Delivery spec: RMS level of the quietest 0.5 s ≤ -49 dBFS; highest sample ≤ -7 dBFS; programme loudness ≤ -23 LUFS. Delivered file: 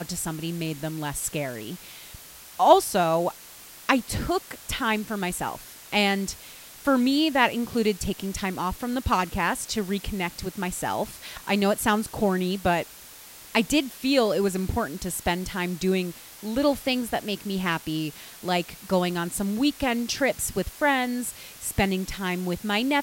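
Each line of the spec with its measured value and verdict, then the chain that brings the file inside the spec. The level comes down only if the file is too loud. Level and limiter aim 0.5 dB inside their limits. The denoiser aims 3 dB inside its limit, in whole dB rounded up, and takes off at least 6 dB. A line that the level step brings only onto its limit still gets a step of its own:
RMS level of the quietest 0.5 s -46 dBFS: fail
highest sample -4.5 dBFS: fail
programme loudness -26.0 LUFS: pass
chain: noise reduction 6 dB, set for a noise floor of -46 dBFS; peak limiter -7.5 dBFS

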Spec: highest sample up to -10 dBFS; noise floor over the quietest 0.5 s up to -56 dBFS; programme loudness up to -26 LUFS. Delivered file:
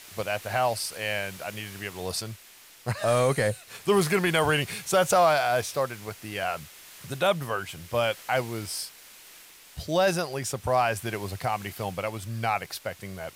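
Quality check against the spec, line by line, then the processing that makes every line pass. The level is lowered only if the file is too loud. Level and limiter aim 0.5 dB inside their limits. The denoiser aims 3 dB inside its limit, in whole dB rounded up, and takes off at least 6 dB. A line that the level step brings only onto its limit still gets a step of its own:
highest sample -10.5 dBFS: pass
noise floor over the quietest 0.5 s -52 dBFS: fail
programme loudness -27.0 LUFS: pass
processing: noise reduction 7 dB, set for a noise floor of -52 dBFS

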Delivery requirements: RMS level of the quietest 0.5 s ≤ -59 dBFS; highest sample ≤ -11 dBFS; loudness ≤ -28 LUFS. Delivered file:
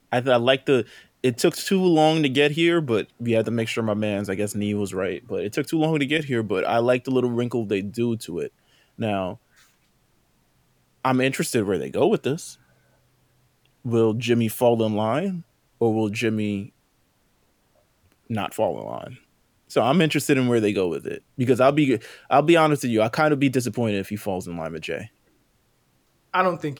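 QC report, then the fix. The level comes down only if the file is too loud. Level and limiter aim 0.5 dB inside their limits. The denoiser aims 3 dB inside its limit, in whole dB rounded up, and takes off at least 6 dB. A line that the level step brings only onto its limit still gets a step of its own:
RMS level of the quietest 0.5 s -65 dBFS: pass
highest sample -5.0 dBFS: fail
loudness -22.5 LUFS: fail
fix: trim -6 dB; peak limiter -11.5 dBFS

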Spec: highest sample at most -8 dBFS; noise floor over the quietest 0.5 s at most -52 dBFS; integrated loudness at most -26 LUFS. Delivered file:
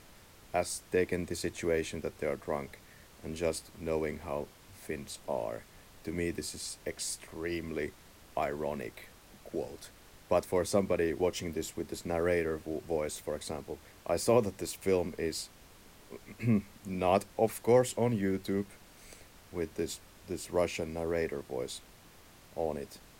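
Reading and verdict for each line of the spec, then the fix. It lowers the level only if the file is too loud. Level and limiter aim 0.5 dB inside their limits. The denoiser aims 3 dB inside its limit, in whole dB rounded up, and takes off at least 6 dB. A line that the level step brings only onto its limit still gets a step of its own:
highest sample -13.0 dBFS: pass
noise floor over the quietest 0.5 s -57 dBFS: pass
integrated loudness -34.0 LUFS: pass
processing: none needed

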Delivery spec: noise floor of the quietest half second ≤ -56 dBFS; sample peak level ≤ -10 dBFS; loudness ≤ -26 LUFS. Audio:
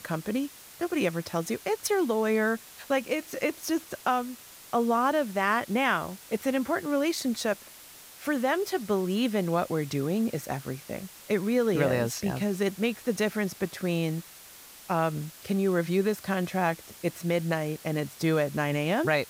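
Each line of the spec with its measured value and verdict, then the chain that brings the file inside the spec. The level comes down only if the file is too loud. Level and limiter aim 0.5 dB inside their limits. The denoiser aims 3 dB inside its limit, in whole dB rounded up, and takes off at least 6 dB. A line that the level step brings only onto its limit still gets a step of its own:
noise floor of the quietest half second -49 dBFS: fail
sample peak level -11.0 dBFS: pass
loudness -28.5 LUFS: pass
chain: noise reduction 10 dB, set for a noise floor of -49 dBFS

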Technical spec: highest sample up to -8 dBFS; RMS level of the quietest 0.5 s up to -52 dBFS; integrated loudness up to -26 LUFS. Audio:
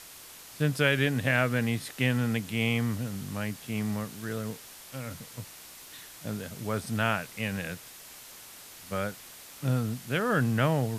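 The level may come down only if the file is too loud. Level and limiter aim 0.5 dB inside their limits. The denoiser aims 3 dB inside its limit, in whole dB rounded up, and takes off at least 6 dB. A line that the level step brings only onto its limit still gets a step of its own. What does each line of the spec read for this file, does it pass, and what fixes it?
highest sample -9.5 dBFS: pass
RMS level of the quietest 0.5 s -48 dBFS: fail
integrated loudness -30.0 LUFS: pass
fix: noise reduction 7 dB, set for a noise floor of -48 dBFS

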